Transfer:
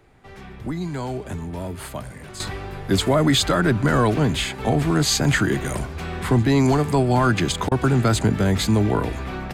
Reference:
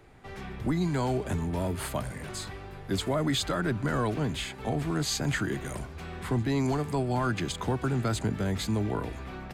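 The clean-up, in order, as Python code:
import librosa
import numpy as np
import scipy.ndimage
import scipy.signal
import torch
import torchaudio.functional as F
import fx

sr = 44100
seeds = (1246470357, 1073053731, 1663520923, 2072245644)

y = fx.fix_interpolate(x, sr, at_s=(7.69,), length_ms=24.0)
y = fx.fix_level(y, sr, at_s=2.4, step_db=-10.0)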